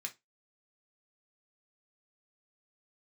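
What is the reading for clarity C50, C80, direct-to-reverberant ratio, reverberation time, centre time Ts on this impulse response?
18.0 dB, 29.5 dB, 2.0 dB, 0.20 s, 7 ms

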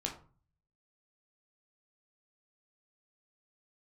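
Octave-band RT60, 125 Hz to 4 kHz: 0.85, 0.55, 0.40, 0.40, 0.30, 0.25 s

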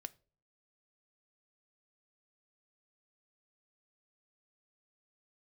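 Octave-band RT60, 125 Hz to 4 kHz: 0.65, 0.55, 0.50, 0.30, 0.30, 0.30 s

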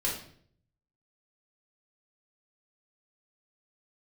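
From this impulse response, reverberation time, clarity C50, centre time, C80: 0.60 s, 5.0 dB, 33 ms, 9.0 dB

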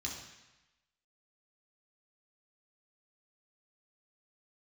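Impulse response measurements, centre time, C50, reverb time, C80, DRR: 44 ms, 4.0 dB, 1.0 s, 6.5 dB, -3.0 dB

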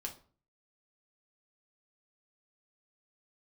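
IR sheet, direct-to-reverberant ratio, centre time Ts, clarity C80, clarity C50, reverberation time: 0.5 dB, 13 ms, 18.0 dB, 12.0 dB, 0.45 s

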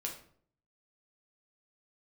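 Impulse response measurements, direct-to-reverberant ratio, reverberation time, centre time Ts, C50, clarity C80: -0.5 dB, 0.55 s, 22 ms, 7.5 dB, 12.0 dB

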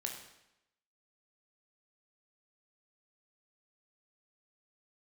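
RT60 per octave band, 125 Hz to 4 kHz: 0.85, 0.85, 0.85, 0.85, 0.85, 0.80 s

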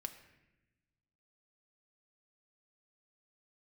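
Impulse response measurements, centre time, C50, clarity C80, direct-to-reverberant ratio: 12 ms, 11.0 dB, 12.5 dB, 6.0 dB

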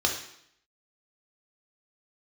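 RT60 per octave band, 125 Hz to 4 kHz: 0.70, 0.75, 0.70, 0.70, 0.70, 0.70 s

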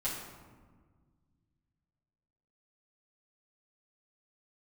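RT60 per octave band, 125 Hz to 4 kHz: 3.0, 2.4, 1.7, 1.5, 1.1, 0.80 s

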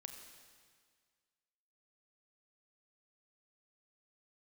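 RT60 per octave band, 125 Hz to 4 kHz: 1.9, 1.8, 1.8, 1.8, 1.8, 1.8 s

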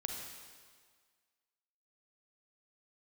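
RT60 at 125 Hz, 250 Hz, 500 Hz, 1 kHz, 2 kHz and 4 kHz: 1.6, 1.6, 1.7, 1.7, 1.6, 1.6 s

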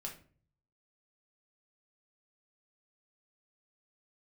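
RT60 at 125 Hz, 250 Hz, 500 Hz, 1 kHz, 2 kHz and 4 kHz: 0.90, 0.65, 0.50, 0.40, 0.35, 0.30 s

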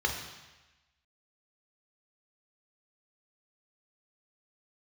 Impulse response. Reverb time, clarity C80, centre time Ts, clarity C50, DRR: 1.1 s, 7.5 dB, 35 ms, 5.5 dB, 1.0 dB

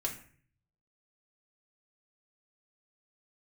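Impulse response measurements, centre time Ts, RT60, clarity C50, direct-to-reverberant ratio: 16 ms, 0.50 s, 10.0 dB, -2.0 dB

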